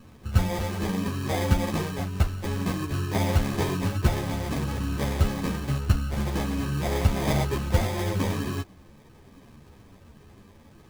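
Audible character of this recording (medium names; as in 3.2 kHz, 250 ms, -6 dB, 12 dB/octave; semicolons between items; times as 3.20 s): aliases and images of a low sample rate 1.4 kHz, jitter 0%; a shimmering, thickened sound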